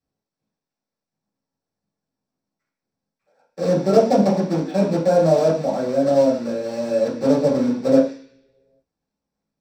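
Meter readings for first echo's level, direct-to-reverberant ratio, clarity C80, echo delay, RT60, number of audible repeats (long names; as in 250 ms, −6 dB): no echo audible, −7.0 dB, 10.0 dB, no echo audible, 0.50 s, no echo audible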